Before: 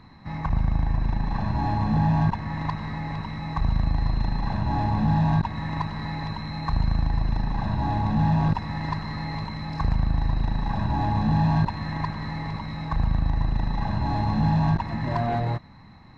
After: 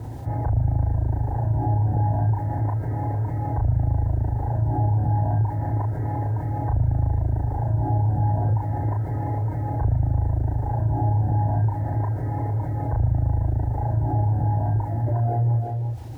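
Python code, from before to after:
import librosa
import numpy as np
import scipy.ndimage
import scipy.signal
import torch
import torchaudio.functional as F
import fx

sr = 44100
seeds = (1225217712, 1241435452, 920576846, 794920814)

p1 = scipy.signal.sosfilt(scipy.signal.butter(6, 1400.0, 'lowpass', fs=sr, output='sos'), x)
p2 = fx.dereverb_blind(p1, sr, rt60_s=0.67)
p3 = scipy.signal.sosfilt(scipy.signal.butter(4, 47.0, 'highpass', fs=sr, output='sos'), p2)
p4 = fx.peak_eq(p3, sr, hz=110.0, db=12.0, octaves=0.39)
p5 = fx.rider(p4, sr, range_db=4, speed_s=2.0)
p6 = fx.fixed_phaser(p5, sr, hz=470.0, stages=4)
p7 = fx.quant_dither(p6, sr, seeds[0], bits=12, dither='none')
p8 = fx.doubler(p7, sr, ms=35.0, db=-3.5)
p9 = p8 + fx.echo_single(p8, sr, ms=343, db=-10.5, dry=0)
y = fx.env_flatten(p9, sr, amount_pct=50)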